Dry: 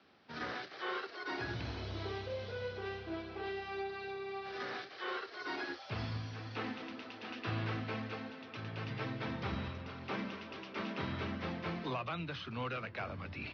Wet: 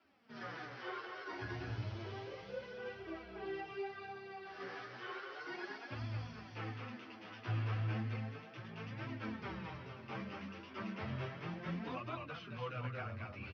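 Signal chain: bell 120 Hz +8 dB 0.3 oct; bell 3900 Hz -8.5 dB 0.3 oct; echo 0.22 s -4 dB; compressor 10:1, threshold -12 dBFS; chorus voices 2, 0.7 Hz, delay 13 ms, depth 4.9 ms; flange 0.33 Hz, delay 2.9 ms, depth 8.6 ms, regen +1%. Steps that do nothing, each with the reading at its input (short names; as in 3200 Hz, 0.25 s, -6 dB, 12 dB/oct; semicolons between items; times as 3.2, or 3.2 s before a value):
compressor, threshold -12 dBFS: input peak -23.0 dBFS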